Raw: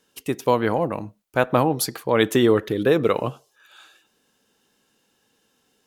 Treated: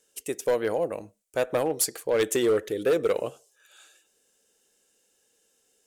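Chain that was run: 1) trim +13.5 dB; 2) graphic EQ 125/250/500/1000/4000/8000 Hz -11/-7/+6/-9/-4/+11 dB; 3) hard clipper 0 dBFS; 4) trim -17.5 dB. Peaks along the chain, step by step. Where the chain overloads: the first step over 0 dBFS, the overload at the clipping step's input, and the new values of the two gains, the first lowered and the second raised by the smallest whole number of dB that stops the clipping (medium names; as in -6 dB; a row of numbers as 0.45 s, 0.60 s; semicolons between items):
+10.0 dBFS, +8.0 dBFS, 0.0 dBFS, -17.5 dBFS; step 1, 8.0 dB; step 1 +5.5 dB, step 4 -9.5 dB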